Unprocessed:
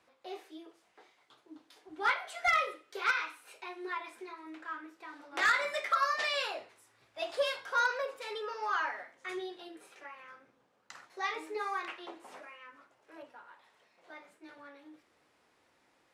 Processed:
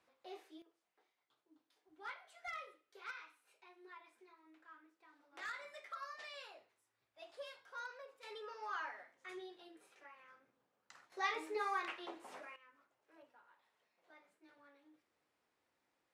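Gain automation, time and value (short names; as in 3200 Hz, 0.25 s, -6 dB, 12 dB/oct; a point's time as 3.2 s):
-8 dB
from 0.62 s -18.5 dB
from 8.23 s -10.5 dB
from 11.12 s -2.5 dB
from 12.56 s -13.5 dB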